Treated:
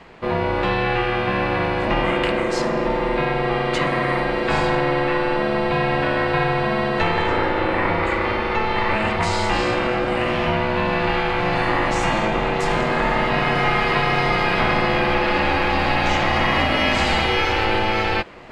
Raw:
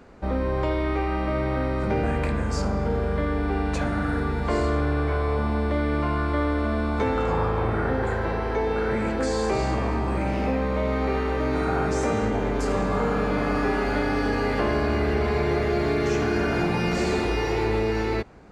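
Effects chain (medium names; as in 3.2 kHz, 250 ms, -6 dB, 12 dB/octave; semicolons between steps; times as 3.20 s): high-order bell 2.5 kHz +9 dB; reverse; upward compressor, threshold -38 dBFS; reverse; ring modulator 430 Hz; trim +6 dB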